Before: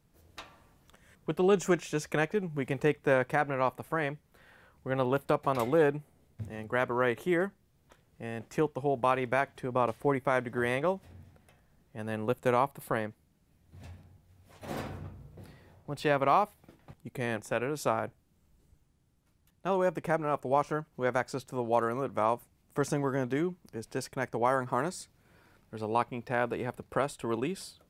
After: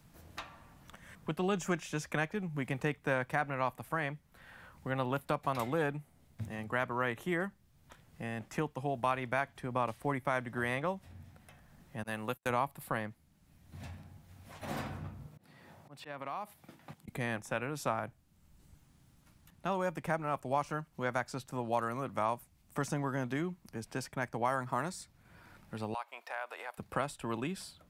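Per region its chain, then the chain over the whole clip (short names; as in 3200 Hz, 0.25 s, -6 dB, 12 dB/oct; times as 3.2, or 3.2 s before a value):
12.03–12.5 tilt +2 dB/oct + gate -42 dBFS, range -35 dB
15.26–17.08 HPF 150 Hz + auto swell 0.47 s + compressor 3:1, threshold -38 dBFS
25.94–26.78 HPF 580 Hz 24 dB/oct + compressor 2:1, threshold -40 dBFS + short-mantissa float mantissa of 6-bit
whole clip: bell 420 Hz -8.5 dB 0.84 oct; three-band squash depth 40%; gain -2 dB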